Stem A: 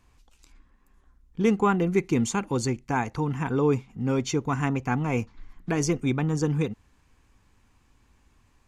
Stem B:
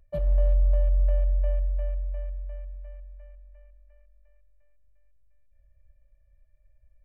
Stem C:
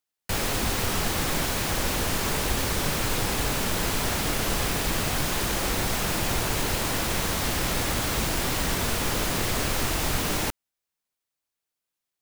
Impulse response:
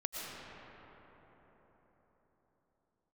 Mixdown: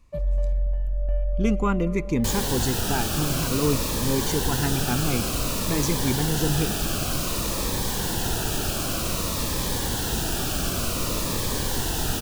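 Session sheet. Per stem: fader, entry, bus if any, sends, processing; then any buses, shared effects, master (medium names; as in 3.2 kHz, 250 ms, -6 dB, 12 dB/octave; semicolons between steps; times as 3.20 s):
-0.5 dB, 0.00 s, send -20.5 dB, none
-1.5 dB, 0.00 s, send -8 dB, tremolo saw down 0.92 Hz, depth 35%
+1.0 dB, 1.95 s, no send, peaking EQ 2.1 kHz -13.5 dB 0.23 oct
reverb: on, RT60 4.7 s, pre-delay 75 ms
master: Shepard-style phaser falling 0.54 Hz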